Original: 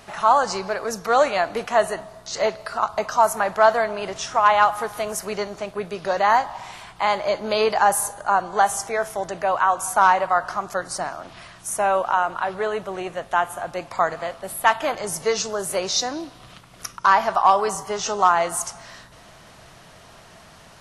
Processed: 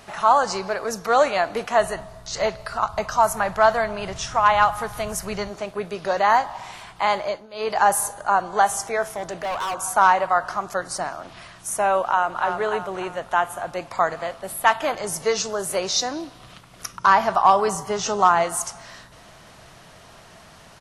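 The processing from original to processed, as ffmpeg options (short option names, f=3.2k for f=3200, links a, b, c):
-filter_complex "[0:a]asplit=3[a][b][c];[a]afade=t=out:st=1.78:d=0.02[d];[b]asubboost=boost=5.5:cutoff=140,afade=t=in:st=1.78:d=0.02,afade=t=out:st=5.49:d=0.02[e];[c]afade=t=in:st=5.49:d=0.02[f];[d][e][f]amix=inputs=3:normalize=0,asplit=3[g][h][i];[g]afade=t=out:st=9.15:d=0.02[j];[h]asoftclip=type=hard:threshold=-24dB,afade=t=in:st=9.15:d=0.02,afade=t=out:st=9.74:d=0.02[k];[i]afade=t=in:st=9.74:d=0.02[l];[j][k][l]amix=inputs=3:normalize=0,asplit=2[m][n];[n]afade=t=in:st=12.04:d=0.01,afade=t=out:st=12.46:d=0.01,aecho=0:1:300|600|900|1200|1500:0.501187|0.225534|0.10149|0.0456707|0.0205518[o];[m][o]amix=inputs=2:normalize=0,asettb=1/sr,asplit=3[p][q][r];[p]atrim=end=16.944[s];[q]atrim=start=16.94:end=18.44,asetpts=PTS-STARTPTS,afade=t=in:d=0.004:c=qsin,afade=t=out:st=1.496:d=0.004:c=qsin,equalizer=f=140:w=0.58:g=6[t];[r]atrim=start=18.436[u];[s][t]acrossfade=d=0.004:c1=hsin:c2=qsin[v];[v][u]acrossfade=d=0.004:c1=qsin:c2=hsin,asplit=3[w][x][y];[w]atrim=end=7.47,asetpts=PTS-STARTPTS,afade=t=out:st=7.18:d=0.29:silence=0.0944061[z];[x]atrim=start=7.47:end=7.52,asetpts=PTS-STARTPTS,volume=-20.5dB[aa];[y]atrim=start=7.52,asetpts=PTS-STARTPTS,afade=t=in:d=0.29:silence=0.0944061[ab];[z][aa][ab]concat=n=3:v=0:a=1"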